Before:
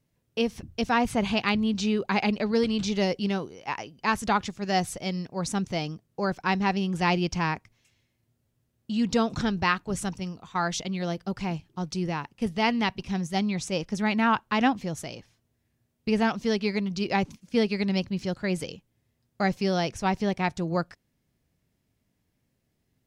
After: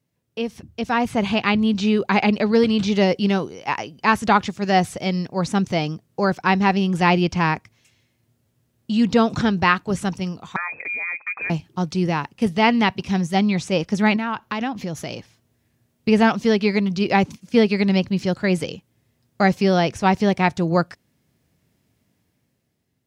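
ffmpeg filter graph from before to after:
ffmpeg -i in.wav -filter_complex "[0:a]asettb=1/sr,asplit=3[link_01][link_02][link_03];[link_01]atrim=end=10.564[link_04];[link_02]atrim=start=10.56:end=11.5,asetpts=PTS-STARTPTS,afade=type=in:duration=0.004:curve=qsin,afade=type=out:start_time=0.936:duration=0.004:curve=qsin,lowpass=frequency=2200:width_type=q:width=0.5098,lowpass=frequency=2200:width_type=q:width=0.6013,lowpass=frequency=2200:width_type=q:width=0.9,lowpass=frequency=2200:width_type=q:width=2.563,afreqshift=-2600,acompressor=threshold=-38dB:ratio=2:attack=3.2:release=140:knee=1:detection=peak[link_05];[link_03]atrim=start=11.496[link_06];[link_04][link_05]acrossfade=duration=0.004:curve1=hsin:curve2=qsin[link_07];[link_07][link_06]acrossfade=duration=0.004:curve1=qsin:curve2=hsin,asettb=1/sr,asplit=3[link_08][link_09][link_10];[link_08]atrim=end=14.164[link_11];[link_09]atrim=start=14.16:end=15.1,asetpts=PTS-STARTPTS,afade=type=in:duration=0.004:curve=qsin,afade=type=out:start_time=0.936:duration=0.004:curve=qsin,equalizer=frequency=8400:width_type=o:width=0.22:gain=-12,acompressor=threshold=-33dB:ratio=3:attack=3.2:release=140:knee=1:detection=peak[link_12];[link_10]atrim=start=15.096[link_13];[link_11][link_12]acrossfade=duration=0.004:curve1=hsin:curve2=qsin[link_14];[link_14][link_13]acrossfade=duration=0.004:curve1=qsin:curve2=hsin,acrossover=split=3700[link_15][link_16];[link_16]acompressor=threshold=-43dB:ratio=4:attack=1:release=60[link_17];[link_15][link_17]amix=inputs=2:normalize=0,highpass=77,dynaudnorm=framelen=250:gausssize=9:maxgain=10dB" out.wav

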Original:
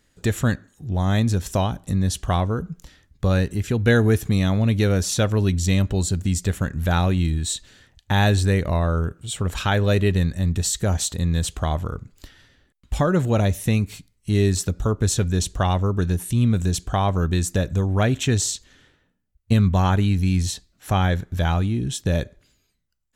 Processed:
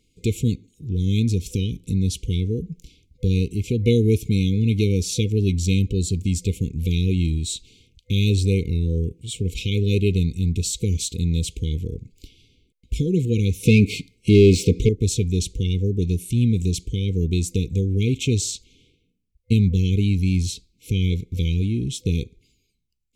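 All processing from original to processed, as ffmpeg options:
ffmpeg -i in.wav -filter_complex "[0:a]asettb=1/sr,asplit=3[link_01][link_02][link_03];[link_01]atrim=end=13.634[link_04];[link_02]atrim=start=13.63:end=14.89,asetpts=PTS-STARTPTS,afade=type=in:duration=0.004:curve=qsin,afade=type=out:start_time=1.256:duration=0.004:curve=qsin,acontrast=21,asplit=2[link_05][link_06];[link_06]highpass=frequency=720:poles=1,volume=25dB,asoftclip=type=tanh:threshold=-4dB[link_07];[link_05][link_07]amix=inputs=2:normalize=0,lowpass=frequency=1200:poles=1,volume=-6dB[link_08];[link_03]atrim=start=14.886[link_09];[link_04][link_08]acrossfade=duration=0.004:curve1=hsin:curve2=qsin[link_10];[link_10][link_09]acrossfade=duration=0.004:curve1=qsin:curve2=hsin,afftfilt=real='re*(1-between(b*sr/4096,500,2100))':imag='im*(1-between(b*sr/4096,500,2100))':win_size=4096:overlap=0.75,highshelf=frequency=7800:gain=-6" out.wav

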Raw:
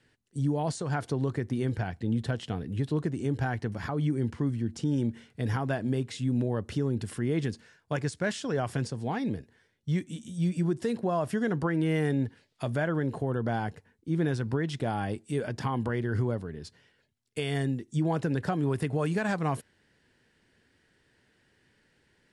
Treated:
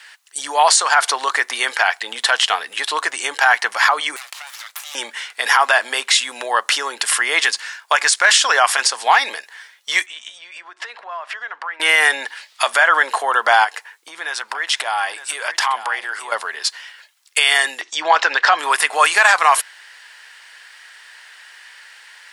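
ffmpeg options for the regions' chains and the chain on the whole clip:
ffmpeg -i in.wav -filter_complex "[0:a]asettb=1/sr,asplit=3[link_01][link_02][link_03];[link_01]atrim=end=4.164[link_04];[link_02]atrim=start=4.16:end=4.95,asetpts=PTS-STARTPTS,afade=type=in:duration=0.004:curve=qsin,afade=type=out:start_time=0.786:duration=0.004:curve=qsin,highpass=1400,aeval=exprs='abs(val(0))':channel_layout=same,acompressor=threshold=-50dB:ratio=6:attack=3.2:release=140:knee=1:detection=peak[link_05];[link_03]atrim=start=4.946[link_06];[link_04][link_05]acrossfade=duration=0.004:curve1=hsin:curve2=qsin[link_07];[link_07][link_06]acrossfade=duration=0.004:curve1=qsin:curve2=hsin,asettb=1/sr,asplit=3[link_08][link_09][link_10];[link_08]atrim=end=10.064[link_11];[link_09]atrim=start=10.06:end=11.8,asetpts=PTS-STARTPTS,afade=type=in:duration=0.004:curve=qsin,afade=type=out:start_time=1.736:duration=0.004:curve=qsin,lowpass=2700,lowshelf=frequency=330:gain=-11.5,acompressor=threshold=-47dB:ratio=6:attack=3.2:release=140:knee=1:detection=peak[link_12];[link_10]atrim=start=11.796[link_13];[link_11][link_12]acrossfade=duration=0.004:curve1=hsin:curve2=qsin[link_14];[link_14][link_13]acrossfade=duration=0.004:curve1=qsin:curve2=hsin,asettb=1/sr,asplit=3[link_15][link_16][link_17];[link_15]atrim=end=13.644[link_18];[link_16]atrim=start=13.64:end=16.32,asetpts=PTS-STARTPTS,afade=type=in:duration=0.004:curve=qsin,afade=type=out:start_time=2.676:duration=0.004:curve=qsin,acompressor=threshold=-37dB:ratio=4:attack=3.2:release=140:knee=1:detection=peak,aecho=1:1:908:0.251,atrim=end_sample=118188[link_19];[link_17]atrim=start=16.316[link_20];[link_18][link_19]acrossfade=duration=0.004:curve1=hsin:curve2=qsin[link_21];[link_21][link_20]acrossfade=duration=0.004:curve1=qsin:curve2=hsin,asettb=1/sr,asplit=3[link_22][link_23][link_24];[link_22]atrim=end=17.814[link_25];[link_23]atrim=start=17.81:end=18.59,asetpts=PTS-STARTPTS,afade=type=in:duration=0.004:curve=qsin,afade=type=out:start_time=0.776:duration=0.004:curve=qsin,lowpass=frequency=5600:width=0.5412,lowpass=frequency=5600:width=1.3066,agate=range=-33dB:threshold=-56dB:ratio=3:release=100:detection=peak,acompressor=mode=upward:threshold=-31dB:ratio=2.5:attack=3.2:release=140:knee=2.83:detection=peak[link_26];[link_24]atrim=start=18.586[link_27];[link_25][link_26]acrossfade=duration=0.004:curve1=hsin:curve2=qsin[link_28];[link_28][link_27]acrossfade=duration=0.004:curve1=qsin:curve2=hsin,highpass=frequency=940:width=0.5412,highpass=frequency=940:width=1.3066,bandreject=frequency=1500:width=30,alimiter=level_in=29dB:limit=-1dB:release=50:level=0:latency=1,volume=-1dB" out.wav

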